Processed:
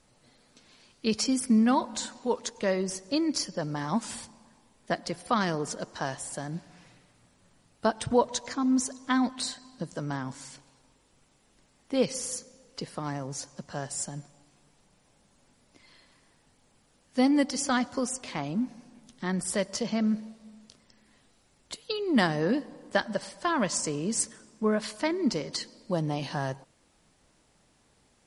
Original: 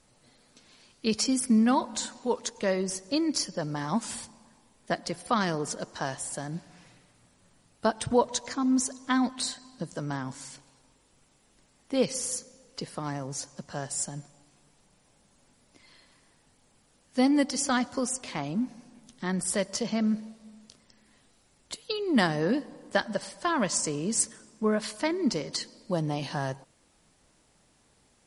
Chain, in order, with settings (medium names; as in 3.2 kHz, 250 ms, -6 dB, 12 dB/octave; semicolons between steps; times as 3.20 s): treble shelf 9.9 kHz -6.5 dB